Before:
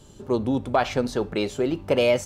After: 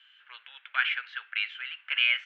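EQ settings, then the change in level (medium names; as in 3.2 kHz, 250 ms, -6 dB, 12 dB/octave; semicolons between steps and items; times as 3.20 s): elliptic band-pass 1.5–3.1 kHz, stop band 80 dB; +7.0 dB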